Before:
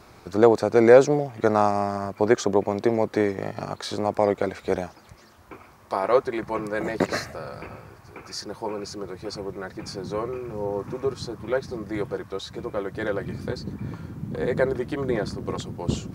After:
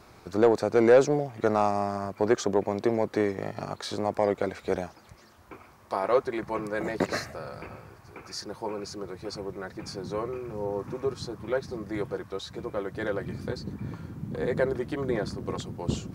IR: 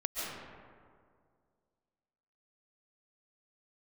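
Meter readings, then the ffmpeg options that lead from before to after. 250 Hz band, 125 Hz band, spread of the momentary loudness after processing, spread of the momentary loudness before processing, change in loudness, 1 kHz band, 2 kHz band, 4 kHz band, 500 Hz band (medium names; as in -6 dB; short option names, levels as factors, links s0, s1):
-3.5 dB, -3.5 dB, 14 LU, 16 LU, -4.0 dB, -4.0 dB, -4.0 dB, -3.0 dB, -4.0 dB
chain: -af "acontrast=38,volume=0.376"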